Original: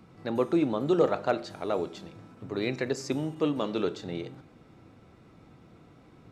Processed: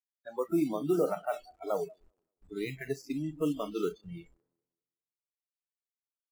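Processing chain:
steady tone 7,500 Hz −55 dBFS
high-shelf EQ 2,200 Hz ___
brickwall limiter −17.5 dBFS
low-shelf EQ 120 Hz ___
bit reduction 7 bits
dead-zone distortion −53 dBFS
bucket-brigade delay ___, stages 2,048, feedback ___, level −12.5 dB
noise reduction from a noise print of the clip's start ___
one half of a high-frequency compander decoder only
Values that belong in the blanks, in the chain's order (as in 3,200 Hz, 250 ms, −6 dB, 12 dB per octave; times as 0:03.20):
−11 dB, −6 dB, 191 ms, 35%, 30 dB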